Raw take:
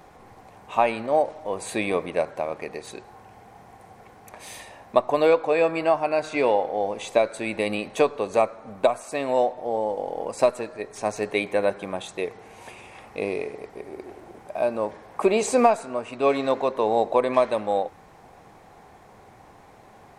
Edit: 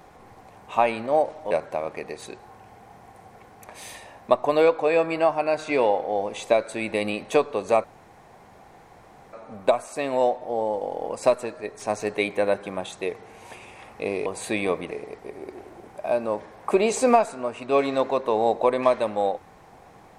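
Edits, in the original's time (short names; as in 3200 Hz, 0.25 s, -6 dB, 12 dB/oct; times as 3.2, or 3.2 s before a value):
1.51–2.16 move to 13.42
8.49 insert room tone 1.49 s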